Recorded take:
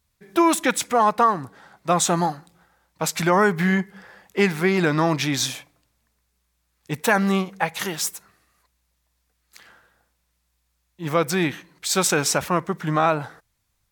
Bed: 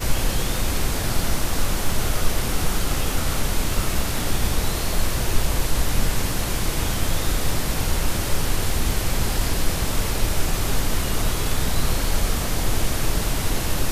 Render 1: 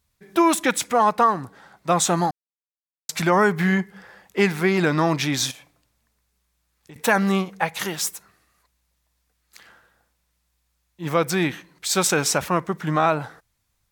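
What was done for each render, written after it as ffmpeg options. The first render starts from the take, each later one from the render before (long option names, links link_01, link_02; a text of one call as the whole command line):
ffmpeg -i in.wav -filter_complex "[0:a]asettb=1/sr,asplit=3[link_01][link_02][link_03];[link_01]atrim=end=5.514[link_04];[link_02]atrim=start=5.51:end=6.96,asetpts=PTS-STARTPTS,afade=type=in:duration=0.004:curve=qsin,afade=type=out:start_time=1.446:duration=0.004:curve=qsin,acompressor=threshold=-41dB:ratio=6:attack=3.2:release=140:knee=1:detection=peak[link_05];[link_03]atrim=start=6.956[link_06];[link_04][link_05]acrossfade=duration=0.004:curve1=hsin:curve2=qsin[link_07];[link_07][link_06]acrossfade=duration=0.004:curve1=qsin:curve2=hsin,asplit=3[link_08][link_09][link_10];[link_08]atrim=end=2.31,asetpts=PTS-STARTPTS,afade=type=out:start_time=2.306:duration=0.004:curve=hsin[link_11];[link_09]atrim=start=2.31:end=3.09,asetpts=PTS-STARTPTS,volume=0[link_12];[link_10]atrim=start=3.09,asetpts=PTS-STARTPTS,afade=type=in:duration=0.004:curve=hsin[link_13];[link_11][link_12][link_13]concat=n=3:v=0:a=1" out.wav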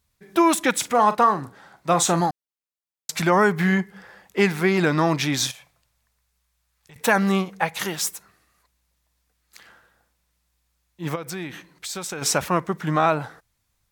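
ffmpeg -i in.wav -filter_complex "[0:a]asettb=1/sr,asplit=3[link_01][link_02][link_03];[link_01]atrim=end=0.734[link_04];[link_02]atrim=start=0.73:end=2.21,asetpts=PTS-STARTPTS,afade=type=in:duration=0.004:curve=qsin,afade=type=out:start_time=1.476:duration=0.004:curve=qsin,asplit=2[link_05][link_06];[link_06]adelay=42,volume=-12dB[link_07];[link_05][link_07]amix=inputs=2:normalize=0,atrim=end_sample=65268[link_08];[link_03]atrim=start=2.206[link_09];[link_04][link_08]acrossfade=duration=0.004:curve1=hsin:curve2=qsin[link_10];[link_10][link_09]acrossfade=duration=0.004:curve1=qsin:curve2=hsin,asettb=1/sr,asplit=3[link_11][link_12][link_13];[link_11]atrim=end=5.474[link_14];[link_12]atrim=start=5.47:end=7.01,asetpts=PTS-STARTPTS,afade=type=in:duration=0.004:curve=qsin,afade=type=out:start_time=1.536:duration=0.004:curve=qsin,equalizer=frequency=290:width=1.5:gain=-14.5[link_15];[link_13]atrim=start=7.006[link_16];[link_14][link_15]acrossfade=duration=0.004:curve1=hsin:curve2=qsin[link_17];[link_17][link_16]acrossfade=duration=0.004:curve1=qsin:curve2=hsin,asplit=3[link_18][link_19][link_20];[link_18]afade=type=out:start_time=11.14:duration=0.02[link_21];[link_19]acompressor=threshold=-30dB:ratio=4:attack=3.2:release=140:knee=1:detection=peak,afade=type=in:start_time=11.14:duration=0.02,afade=type=out:start_time=12.21:duration=0.02[link_22];[link_20]afade=type=in:start_time=12.21:duration=0.02[link_23];[link_21][link_22][link_23]amix=inputs=3:normalize=0" out.wav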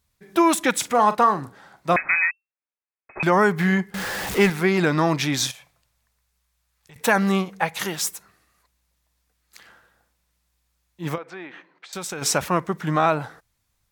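ffmpeg -i in.wav -filter_complex "[0:a]asettb=1/sr,asplit=3[link_01][link_02][link_03];[link_01]atrim=end=1.964[link_04];[link_02]atrim=start=1.96:end=3.23,asetpts=PTS-STARTPTS,afade=type=in:duration=0.004:curve=qsin,afade=type=out:start_time=1.266:duration=0.004:curve=qsin,lowpass=frequency=2300:width_type=q:width=0.5098,lowpass=frequency=2300:width_type=q:width=0.6013,lowpass=frequency=2300:width_type=q:width=0.9,lowpass=frequency=2300:width_type=q:width=2.563,afreqshift=-2700[link_05];[link_03]atrim=start=3.226[link_06];[link_04][link_05]acrossfade=duration=0.004:curve1=hsin:curve2=qsin[link_07];[link_07][link_06]acrossfade=duration=0.004:curve1=qsin:curve2=hsin,asettb=1/sr,asplit=3[link_08][link_09][link_10];[link_08]atrim=end=3.944[link_11];[link_09]atrim=start=3.94:end=4.5,asetpts=PTS-STARTPTS,afade=type=in:duration=0.004:curve=qsin,afade=type=out:start_time=0.556:duration=0.004:curve=qsin,aeval=exprs='val(0)+0.5*0.0668*sgn(val(0))':channel_layout=same[link_12];[link_10]atrim=start=4.496[link_13];[link_11][link_12]acrossfade=duration=0.004:curve1=hsin:curve2=qsin[link_14];[link_14][link_13]acrossfade=duration=0.004:curve1=qsin:curve2=hsin,asettb=1/sr,asplit=3[link_15][link_16][link_17];[link_15]atrim=end=11.184[link_18];[link_16]atrim=start=11.18:end=11.93,asetpts=PTS-STARTPTS,afade=type=in:duration=0.004:curve=qsin,afade=type=out:start_time=0.746:duration=0.004:curve=qsin,highpass=400,lowpass=2200[link_19];[link_17]atrim=start=11.926[link_20];[link_18][link_19]acrossfade=duration=0.004:curve1=hsin:curve2=qsin[link_21];[link_21][link_20]acrossfade=duration=0.004:curve1=qsin:curve2=hsin" out.wav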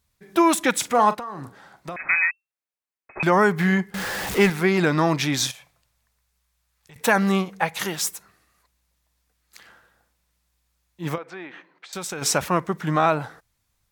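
ffmpeg -i in.wav -filter_complex "[0:a]asplit=3[link_01][link_02][link_03];[link_01]afade=type=out:start_time=1.13:duration=0.02[link_04];[link_02]acompressor=threshold=-29dB:ratio=12:attack=3.2:release=140:knee=1:detection=peak,afade=type=in:start_time=1.13:duration=0.02,afade=type=out:start_time=1.99:duration=0.02[link_05];[link_03]afade=type=in:start_time=1.99:duration=0.02[link_06];[link_04][link_05][link_06]amix=inputs=3:normalize=0" out.wav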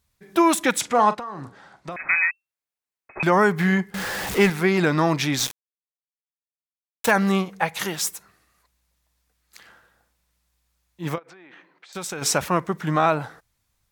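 ffmpeg -i in.wav -filter_complex "[0:a]asettb=1/sr,asplit=3[link_01][link_02][link_03];[link_01]atrim=end=0.814[link_04];[link_02]atrim=start=0.81:end=1.92,asetpts=PTS-STARTPTS,afade=type=in:duration=0.004:curve=qsin,afade=type=out:start_time=1.106:duration=0.004:curve=qsin,lowpass=7900[link_05];[link_03]atrim=start=1.916[link_06];[link_04][link_05]acrossfade=duration=0.004:curve1=hsin:curve2=qsin[link_07];[link_07][link_06]acrossfade=duration=0.004:curve1=qsin:curve2=hsin,asettb=1/sr,asplit=3[link_08][link_09][link_10];[link_08]atrim=end=5.394[link_11];[link_09]atrim=start=5.39:end=7.11,asetpts=PTS-STARTPTS,afade=type=in:duration=0.004:curve=qsin,afade=type=out:start_time=1.716:duration=0.004:curve=qsin,aeval=exprs='val(0)*gte(abs(val(0)),0.0596)':channel_layout=same[link_12];[link_10]atrim=start=7.106[link_13];[link_11][link_12]acrossfade=duration=0.004:curve1=hsin:curve2=qsin[link_14];[link_14][link_13]acrossfade=duration=0.004:curve1=qsin:curve2=hsin,asplit=3[link_15][link_16][link_17];[link_15]afade=type=out:start_time=11.18:duration=0.02[link_18];[link_16]acompressor=threshold=-43dB:ratio=16:attack=3.2:release=140:knee=1:detection=peak,afade=type=in:start_time=11.18:duration=0.02,afade=type=out:start_time=11.94:duration=0.02[link_19];[link_17]afade=type=in:start_time=11.94:duration=0.02[link_20];[link_18][link_19][link_20]amix=inputs=3:normalize=0" out.wav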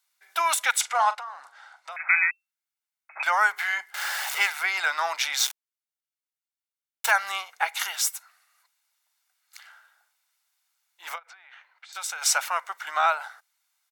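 ffmpeg -i in.wav -af "highpass=frequency=890:width=0.5412,highpass=frequency=890:width=1.3066,aecho=1:1:1.4:0.38" out.wav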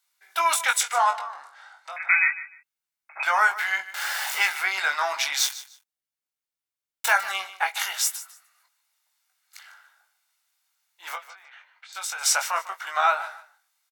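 ffmpeg -i in.wav -filter_complex "[0:a]asplit=2[link_01][link_02];[link_02]adelay=21,volume=-5.5dB[link_03];[link_01][link_03]amix=inputs=2:normalize=0,aecho=1:1:150|300:0.168|0.0353" out.wav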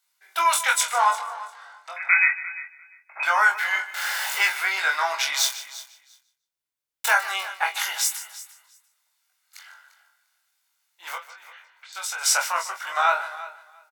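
ffmpeg -i in.wav -filter_complex "[0:a]asplit=2[link_01][link_02];[link_02]adelay=23,volume=-5dB[link_03];[link_01][link_03]amix=inputs=2:normalize=0,aecho=1:1:347|694:0.15|0.0224" out.wav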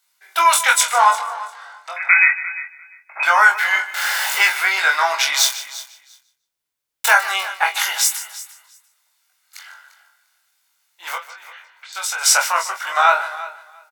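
ffmpeg -i in.wav -af "volume=6.5dB,alimiter=limit=-1dB:level=0:latency=1" out.wav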